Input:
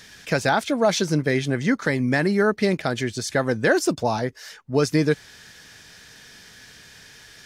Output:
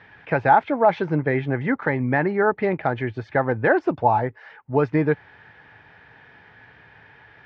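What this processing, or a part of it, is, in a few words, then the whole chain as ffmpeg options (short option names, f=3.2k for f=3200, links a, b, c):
bass cabinet: -af "highpass=67,equalizer=f=110:t=q:w=4:g=4,equalizer=f=210:t=q:w=4:g=-7,equalizer=f=850:t=q:w=4:g=10,lowpass=f=2.3k:w=0.5412,lowpass=f=2.3k:w=1.3066"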